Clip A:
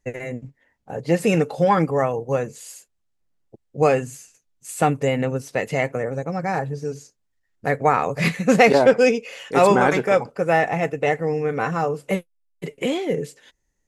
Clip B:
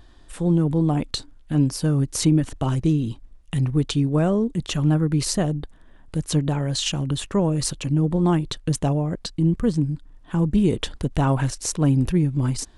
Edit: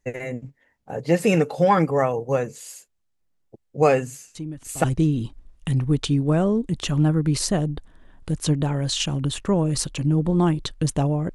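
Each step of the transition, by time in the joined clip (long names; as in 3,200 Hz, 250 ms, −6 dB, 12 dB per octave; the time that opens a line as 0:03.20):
clip A
0:04.35: mix in clip B from 0:02.21 0.49 s −15 dB
0:04.84: continue with clip B from 0:02.70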